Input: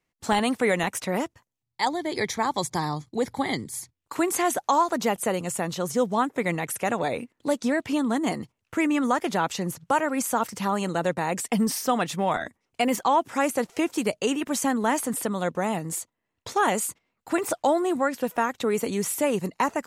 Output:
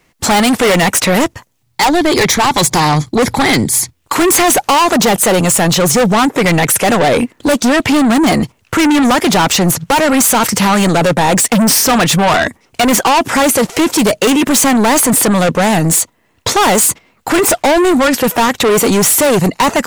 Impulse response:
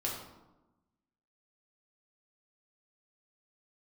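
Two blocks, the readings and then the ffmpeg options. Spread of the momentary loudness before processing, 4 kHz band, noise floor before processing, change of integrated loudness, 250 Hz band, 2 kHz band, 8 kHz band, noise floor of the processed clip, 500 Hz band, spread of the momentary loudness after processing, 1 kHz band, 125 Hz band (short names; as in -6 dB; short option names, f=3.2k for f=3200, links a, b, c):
7 LU, +19.5 dB, -82 dBFS, +15.0 dB, +15.0 dB, +15.5 dB, +19.5 dB, -57 dBFS, +13.5 dB, 5 LU, +13.0 dB, +18.0 dB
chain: -af "asoftclip=type=tanh:threshold=-27.5dB,apsyclip=32.5dB,volume=-8dB"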